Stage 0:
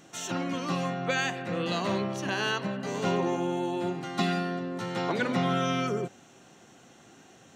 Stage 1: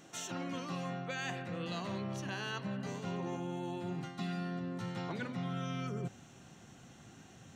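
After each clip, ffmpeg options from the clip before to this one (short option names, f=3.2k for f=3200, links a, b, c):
-af "asubboost=boost=4:cutoff=180,areverse,acompressor=threshold=-33dB:ratio=6,areverse,volume=-3dB"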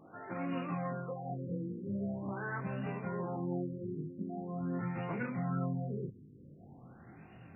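-af "flanger=delay=19.5:depth=5.2:speed=0.48,afftfilt=real='re*lt(b*sr/1024,490*pow(2900/490,0.5+0.5*sin(2*PI*0.44*pts/sr)))':imag='im*lt(b*sr/1024,490*pow(2900/490,0.5+0.5*sin(2*PI*0.44*pts/sr)))':win_size=1024:overlap=0.75,volume=5dB"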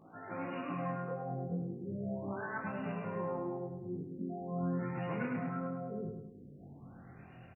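-af "flanger=delay=18.5:depth=4.5:speed=0.34,aecho=1:1:104|208|312|416|520|624:0.562|0.27|0.13|0.0622|0.0299|0.0143,volume=2dB"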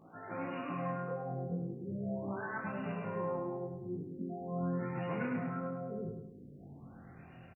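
-filter_complex "[0:a]asplit=2[a][b];[b]adelay=36,volume=-12.5dB[c];[a][c]amix=inputs=2:normalize=0"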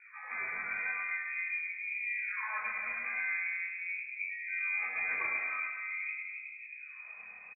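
-filter_complex "[0:a]asplit=2[a][b];[b]adelay=270,lowpass=f=830:p=1,volume=-5dB,asplit=2[c][d];[d]adelay=270,lowpass=f=830:p=1,volume=0.44,asplit=2[e][f];[f]adelay=270,lowpass=f=830:p=1,volume=0.44,asplit=2[g][h];[h]adelay=270,lowpass=f=830:p=1,volume=0.44,asplit=2[i][j];[j]adelay=270,lowpass=f=830:p=1,volume=0.44[k];[a][c][e][g][i][k]amix=inputs=6:normalize=0,asubboost=boost=4.5:cutoff=75,lowpass=f=2.2k:t=q:w=0.5098,lowpass=f=2.2k:t=q:w=0.6013,lowpass=f=2.2k:t=q:w=0.9,lowpass=f=2.2k:t=q:w=2.563,afreqshift=-2600,volume=2dB"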